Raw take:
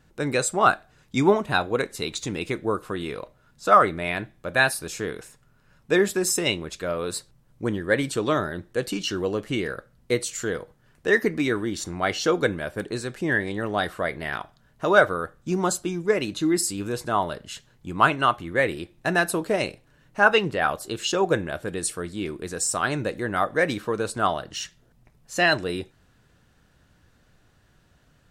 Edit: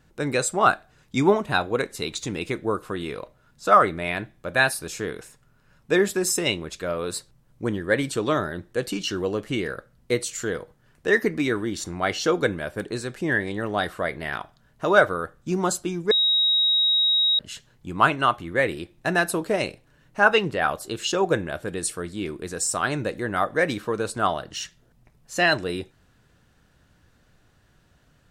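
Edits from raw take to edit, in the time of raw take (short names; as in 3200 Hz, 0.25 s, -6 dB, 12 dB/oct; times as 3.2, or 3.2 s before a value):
16.11–17.39 bleep 3800 Hz -17 dBFS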